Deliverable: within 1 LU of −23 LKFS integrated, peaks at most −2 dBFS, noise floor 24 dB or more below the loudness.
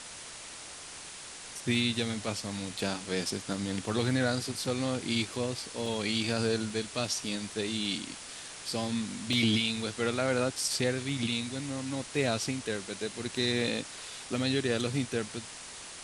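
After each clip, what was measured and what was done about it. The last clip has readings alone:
number of dropouts 4; longest dropout 1.8 ms; background noise floor −45 dBFS; target noise floor −56 dBFS; integrated loudness −31.5 LKFS; sample peak −14.0 dBFS; target loudness −23.0 LKFS
→ repair the gap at 0:05.86/0:06.70/0:09.33/0:11.09, 1.8 ms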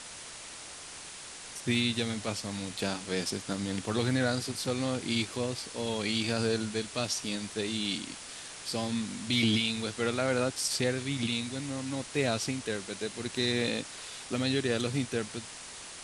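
number of dropouts 0; background noise floor −45 dBFS; target noise floor −56 dBFS
→ broadband denoise 11 dB, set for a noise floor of −45 dBFS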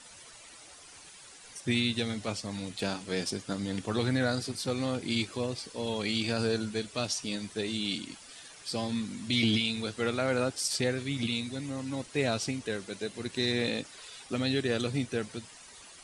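background noise floor −52 dBFS; target noise floor −56 dBFS
→ broadband denoise 6 dB, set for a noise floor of −52 dBFS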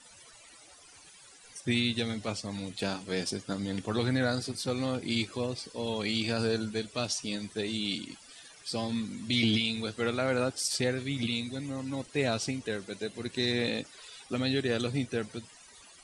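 background noise floor −55 dBFS; target noise floor −56 dBFS
→ broadband denoise 6 dB, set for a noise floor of −55 dBFS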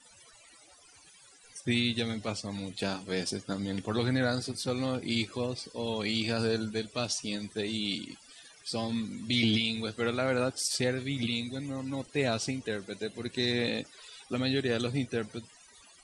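background noise floor −58 dBFS; integrated loudness −31.5 LKFS; sample peak −14.0 dBFS; target loudness −23.0 LKFS
→ level +8.5 dB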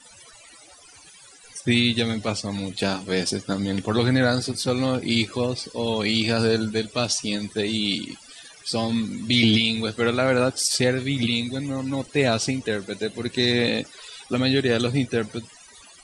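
integrated loudness −23.5 LKFS; sample peak −5.5 dBFS; background noise floor −49 dBFS

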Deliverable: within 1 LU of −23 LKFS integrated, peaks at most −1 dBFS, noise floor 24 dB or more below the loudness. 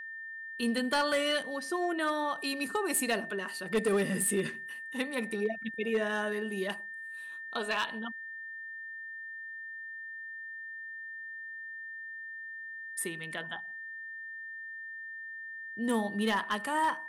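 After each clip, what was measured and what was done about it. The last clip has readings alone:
share of clipped samples 0.4%; peaks flattened at −22.5 dBFS; interfering tone 1,800 Hz; level of the tone −40 dBFS; integrated loudness −34.0 LKFS; sample peak −22.5 dBFS; target loudness −23.0 LKFS
→ clipped peaks rebuilt −22.5 dBFS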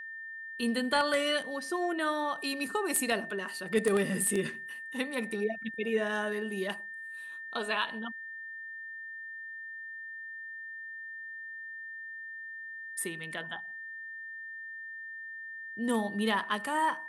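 share of clipped samples 0.0%; interfering tone 1,800 Hz; level of the tone −40 dBFS
→ notch filter 1,800 Hz, Q 30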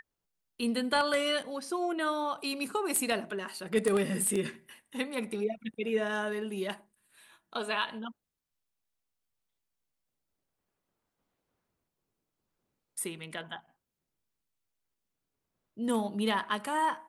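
interfering tone none found; integrated loudness −32.0 LKFS; sample peak −13.5 dBFS; target loudness −23.0 LKFS
→ level +9 dB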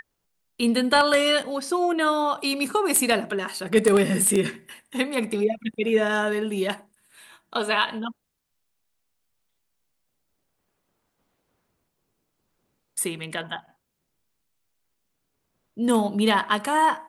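integrated loudness −23.0 LKFS; sample peak −4.5 dBFS; background noise floor −77 dBFS

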